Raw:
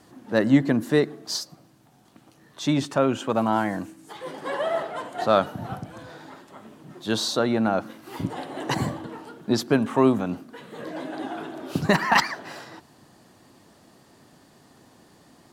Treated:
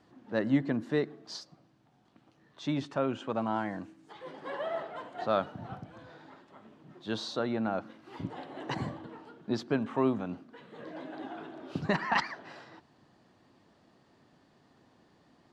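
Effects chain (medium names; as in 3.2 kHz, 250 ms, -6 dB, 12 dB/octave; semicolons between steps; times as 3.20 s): low-pass 4.3 kHz 12 dB/octave; trim -9 dB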